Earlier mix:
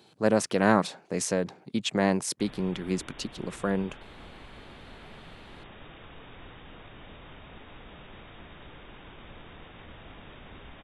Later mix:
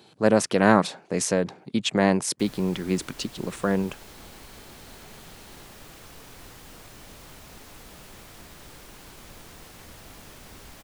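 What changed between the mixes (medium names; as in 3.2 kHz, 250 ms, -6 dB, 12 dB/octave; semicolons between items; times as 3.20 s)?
speech +4.0 dB; background: remove brick-wall FIR low-pass 3.8 kHz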